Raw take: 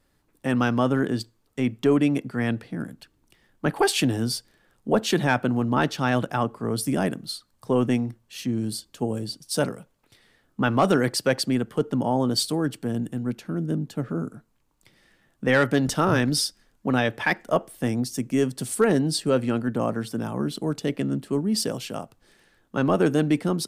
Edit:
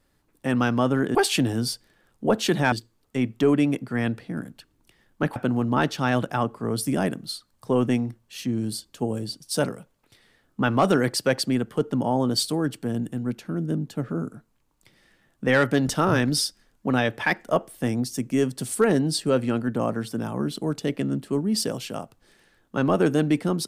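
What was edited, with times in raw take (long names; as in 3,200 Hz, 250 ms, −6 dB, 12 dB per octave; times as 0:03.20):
0:03.79–0:05.36: move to 0:01.15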